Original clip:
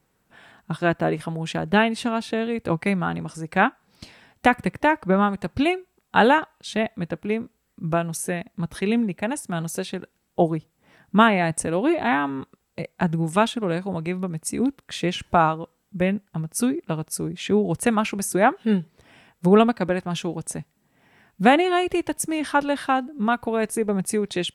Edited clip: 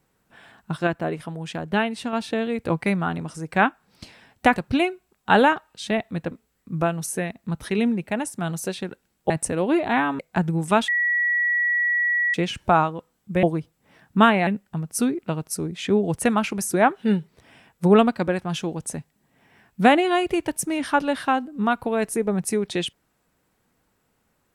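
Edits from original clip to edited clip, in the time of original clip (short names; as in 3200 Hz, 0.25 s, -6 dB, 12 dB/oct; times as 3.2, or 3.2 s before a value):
0.87–2.13 gain -4 dB
4.56–5.42 cut
7.17–7.42 cut
10.41–11.45 move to 16.08
12.34–12.84 cut
13.53–14.99 bleep 1930 Hz -18.5 dBFS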